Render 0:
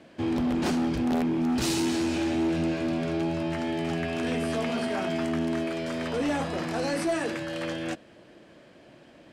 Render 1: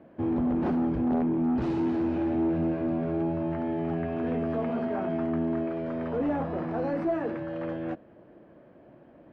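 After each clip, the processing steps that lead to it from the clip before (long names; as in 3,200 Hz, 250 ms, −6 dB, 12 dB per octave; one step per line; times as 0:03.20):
low-pass filter 1,100 Hz 12 dB per octave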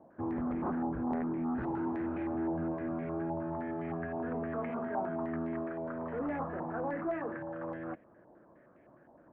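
low-pass on a step sequencer 9.7 Hz 900–2,100 Hz
level −8.5 dB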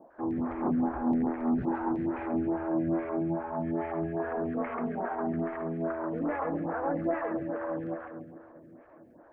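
echo with a time of its own for lows and highs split 520 Hz, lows 286 ms, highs 136 ms, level −4 dB
phaser with staggered stages 2.4 Hz
level +5 dB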